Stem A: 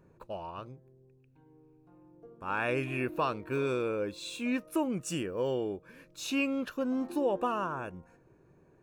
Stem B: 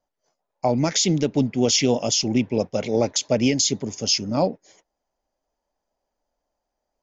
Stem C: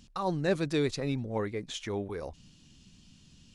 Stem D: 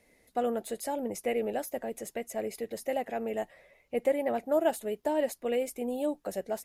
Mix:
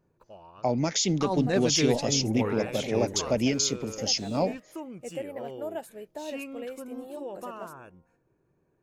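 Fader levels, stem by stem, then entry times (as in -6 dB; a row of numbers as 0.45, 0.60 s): -9.0, -5.5, +1.0, -9.0 dB; 0.00, 0.00, 1.05, 1.10 s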